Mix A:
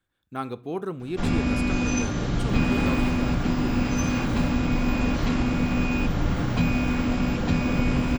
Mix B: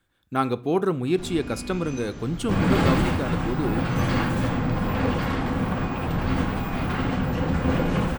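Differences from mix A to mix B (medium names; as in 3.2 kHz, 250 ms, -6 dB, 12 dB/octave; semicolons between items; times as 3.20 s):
speech +8.0 dB; first sound -12.0 dB; second sound +8.0 dB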